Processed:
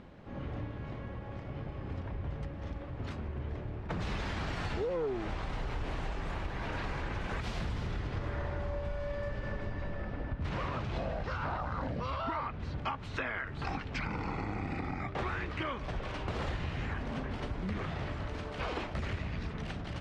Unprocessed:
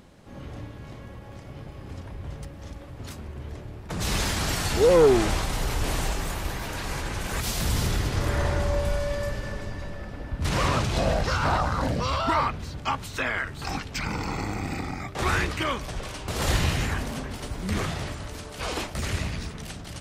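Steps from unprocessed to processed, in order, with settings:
low-pass filter 2,700 Hz 12 dB per octave
downward compressor 10 to 1, threshold −32 dBFS, peak gain reduction 17.5 dB

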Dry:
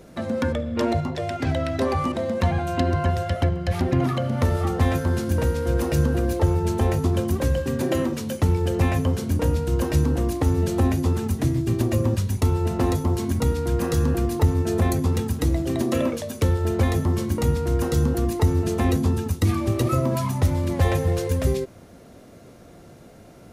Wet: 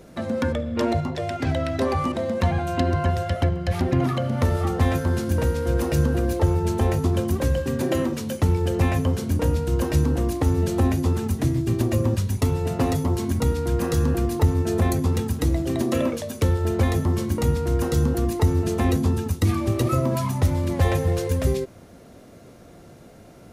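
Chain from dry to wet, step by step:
0:12.39–0:13.09: comb filter 7.2 ms, depth 53%

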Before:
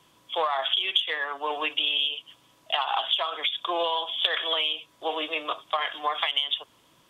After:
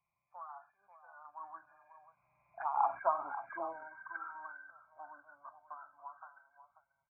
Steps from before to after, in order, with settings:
hearing-aid frequency compression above 1,300 Hz 4 to 1
source passing by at 0:03.00, 16 m/s, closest 2 metres
phaser with its sweep stopped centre 1,700 Hz, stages 6
on a send: single-tap delay 539 ms −12 dB
on the sum: phaser swept by the level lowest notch 280 Hz, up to 1,800 Hz, full sweep at −38 dBFS
level +7 dB

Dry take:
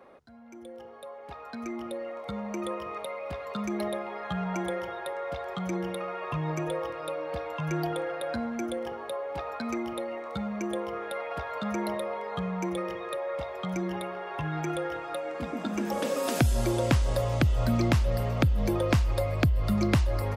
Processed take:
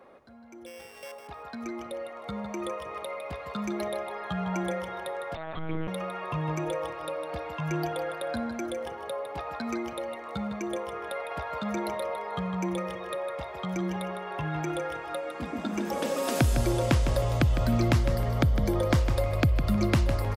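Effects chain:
0:00.66–0:01.12: samples sorted by size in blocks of 16 samples
0:17.95–0:19.00: notch filter 2,600 Hz, Q 6.6
repeating echo 156 ms, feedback 24%, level −9 dB
0:05.35–0:05.88: one-pitch LPC vocoder at 8 kHz 160 Hz

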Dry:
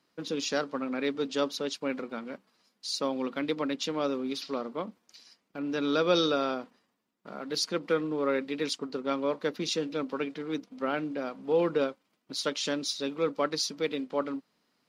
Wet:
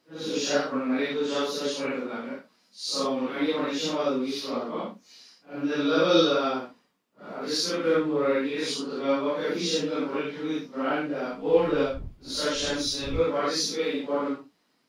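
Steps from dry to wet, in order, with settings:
random phases in long frames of 200 ms
0:11.30–0:13.19: wind on the microphone 87 Hz −42 dBFS
mains-hum notches 50/100/150 Hz
level +4 dB

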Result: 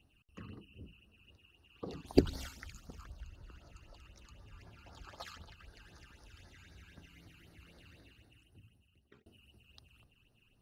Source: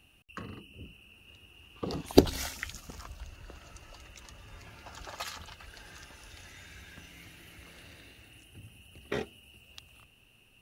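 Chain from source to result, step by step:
0:01.36–0:02.04: low-shelf EQ 320 Hz −6.5 dB
all-pass phaser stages 12, 3.9 Hz, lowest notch 580–2,800 Hz
high-shelf EQ 5,800 Hz −8.5 dB
0:08.06–0:09.26: fade out
level −5 dB

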